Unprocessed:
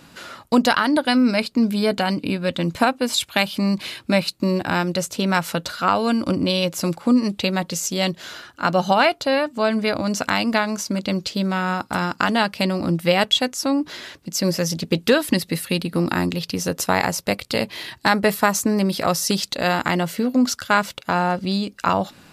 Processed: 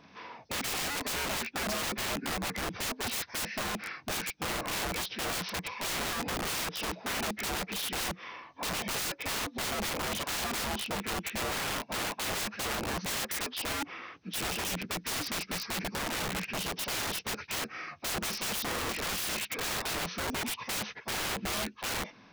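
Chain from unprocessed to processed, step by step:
partials spread apart or drawn together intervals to 79%
wrap-around overflow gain 22 dB
level −6.5 dB

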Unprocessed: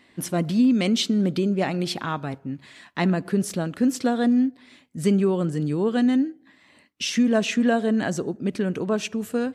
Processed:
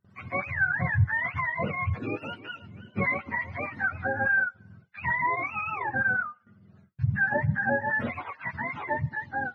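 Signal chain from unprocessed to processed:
frequency axis turned over on the octave scale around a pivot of 620 Hz
noise gate with hold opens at −46 dBFS
0:02.00–0:04.44: feedback echo with a swinging delay time 320 ms, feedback 37%, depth 114 cents, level −16.5 dB
level −3.5 dB

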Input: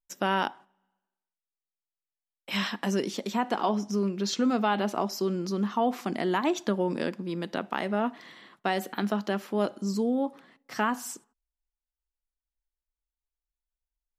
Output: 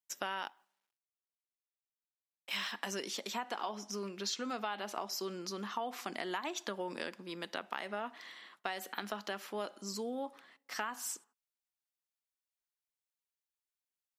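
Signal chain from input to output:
0:00.46–0:02.72: mu-law and A-law mismatch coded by A
high-pass filter 1,200 Hz 6 dB per octave
downward compressor 6 to 1, threshold −34 dBFS, peak gain reduction 9 dB

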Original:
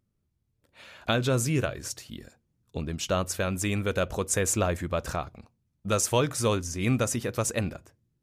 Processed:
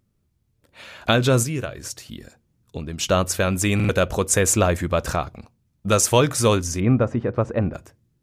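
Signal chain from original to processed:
0:01.43–0:02.98: downward compressor 1.5 to 1, threshold −45 dBFS, peak gain reduction 8.5 dB
0:06.80–0:07.74: low-pass filter 1,200 Hz 12 dB per octave
buffer that repeats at 0:03.75, samples 2,048, times 2
level +7.5 dB

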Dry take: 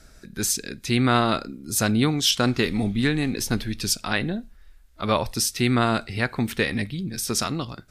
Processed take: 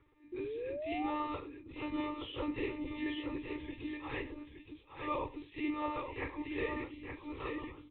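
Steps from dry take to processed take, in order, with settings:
random phases in long frames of 100 ms
one-pitch LPC vocoder at 8 kHz 300 Hz
high-pass filter 110 Hz 6 dB per octave
on a send: multi-tap delay 41/99/872 ms −17/−18.5/−7 dB
on the sum: de-essing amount 90%
low-pass filter 2,000 Hz 6 dB per octave
phaser with its sweep stopped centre 1,000 Hz, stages 8
sound drawn into the spectrogram rise, 0:00.32–0:01.11, 350–850 Hz −32 dBFS
level −8 dB

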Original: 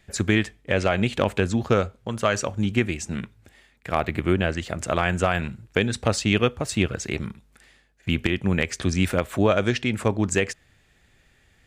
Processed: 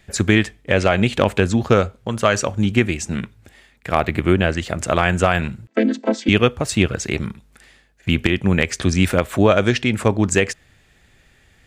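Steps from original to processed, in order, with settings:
0:05.67–0:06.29: channel vocoder with a chord as carrier minor triad, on A3
level +5.5 dB

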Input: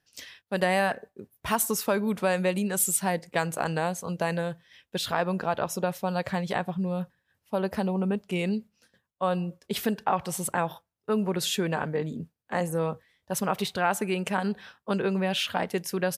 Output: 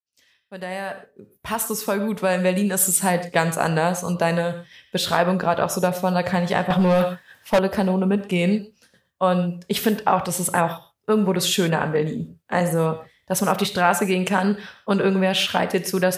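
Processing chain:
fade in at the beginning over 3.26 s
reverb whose tail is shaped and stops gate 150 ms flat, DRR 9.5 dB
0:06.70–0:07.59: mid-hump overdrive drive 23 dB, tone 7,900 Hz, clips at −15.5 dBFS
level +7 dB

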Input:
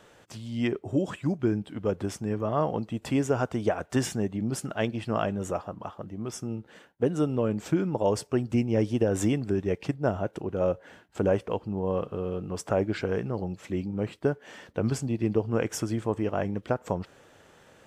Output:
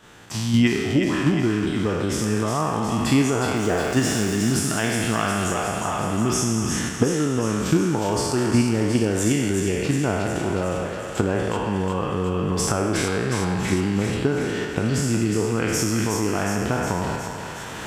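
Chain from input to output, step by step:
peak hold with a decay on every bin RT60 1.28 s
camcorder AGC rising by 21 dB per second
parametric band 550 Hz −9.5 dB 0.67 octaves
in parallel at 0 dB: output level in coarse steps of 11 dB
0:03.56–0:04.47: on the sum: centre clipping without the shift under −35 dBFS
feedback echo with a high-pass in the loop 363 ms, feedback 67%, high-pass 820 Hz, level −5 dB

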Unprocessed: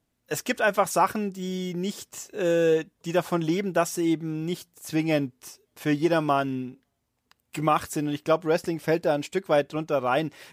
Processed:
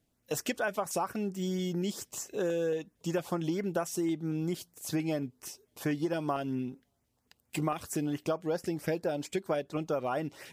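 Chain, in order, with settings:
downward compressor 6 to 1, threshold −28 dBFS, peak gain reduction 12 dB
auto-filter notch saw up 4.4 Hz 860–4,400 Hz

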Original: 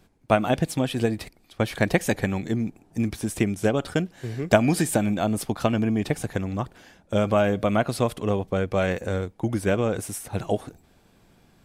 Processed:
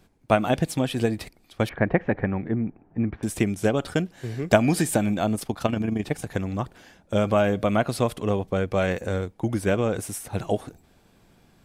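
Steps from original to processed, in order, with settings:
0:01.69–0:03.23: low-pass filter 2,000 Hz 24 dB per octave
0:05.35–0:06.31: amplitude modulation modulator 26 Hz, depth 40%

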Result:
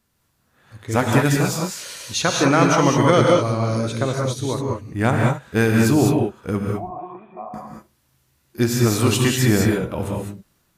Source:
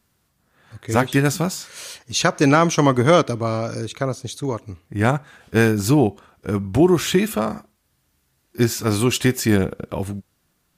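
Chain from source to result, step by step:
automatic gain control gain up to 3.5 dB
0:06.69–0:07.54: formant resonators in series a
reverb whose tail is shaped and stops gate 230 ms rising, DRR −0.5 dB
level −3 dB

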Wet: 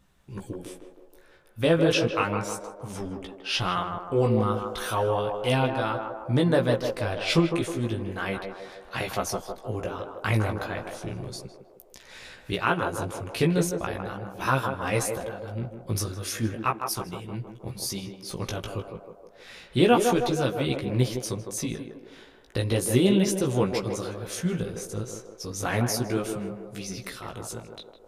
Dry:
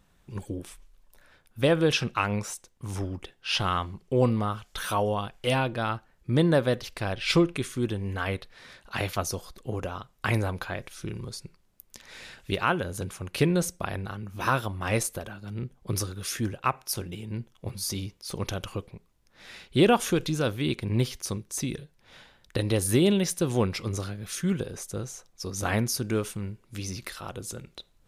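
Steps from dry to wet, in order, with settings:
chorus effect 0.34 Hz, delay 15 ms, depth 3.5 ms
feedback echo with a band-pass in the loop 157 ms, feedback 65%, band-pass 600 Hz, level −3.5 dB
level +3 dB

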